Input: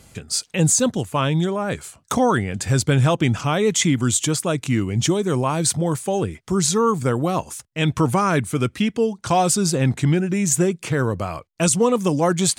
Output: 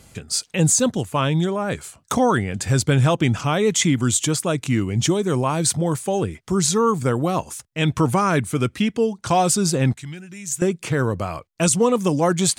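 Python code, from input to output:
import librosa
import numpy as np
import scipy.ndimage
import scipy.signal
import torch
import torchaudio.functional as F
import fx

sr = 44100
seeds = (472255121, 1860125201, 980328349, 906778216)

y = fx.tone_stack(x, sr, knobs='5-5-5', at=(9.93, 10.62))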